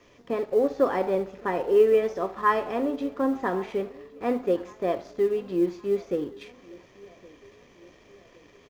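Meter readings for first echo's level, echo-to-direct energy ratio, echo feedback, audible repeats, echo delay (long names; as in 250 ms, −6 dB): −23.0 dB, −22.0 dB, 47%, 2, 1,113 ms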